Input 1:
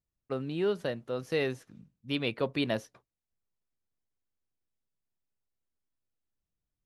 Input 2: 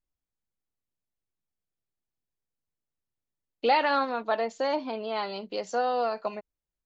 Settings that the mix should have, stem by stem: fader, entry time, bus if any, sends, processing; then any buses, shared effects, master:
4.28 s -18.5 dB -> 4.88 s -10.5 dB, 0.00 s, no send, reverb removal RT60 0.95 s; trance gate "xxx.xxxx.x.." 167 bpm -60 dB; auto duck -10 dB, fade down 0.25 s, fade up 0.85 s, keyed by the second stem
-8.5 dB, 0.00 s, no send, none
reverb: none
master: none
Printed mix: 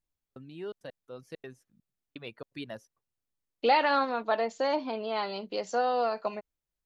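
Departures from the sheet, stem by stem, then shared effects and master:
stem 1 -18.5 dB -> -9.5 dB; stem 2 -8.5 dB -> -0.5 dB

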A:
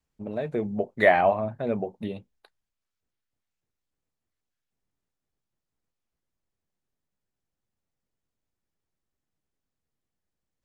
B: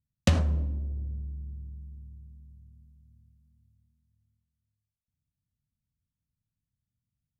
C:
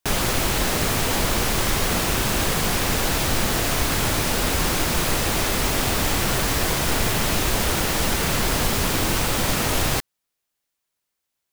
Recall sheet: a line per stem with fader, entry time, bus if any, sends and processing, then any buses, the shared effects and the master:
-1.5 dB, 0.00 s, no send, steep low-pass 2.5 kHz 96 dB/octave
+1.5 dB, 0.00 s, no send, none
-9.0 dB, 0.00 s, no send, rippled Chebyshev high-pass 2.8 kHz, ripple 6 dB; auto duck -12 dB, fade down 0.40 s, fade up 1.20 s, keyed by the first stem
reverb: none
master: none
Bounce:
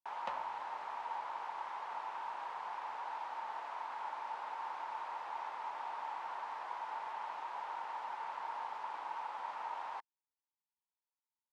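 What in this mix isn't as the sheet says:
stem A: muted; stem C: missing rippled Chebyshev high-pass 2.8 kHz, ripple 6 dB; master: extra ladder band-pass 960 Hz, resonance 80%

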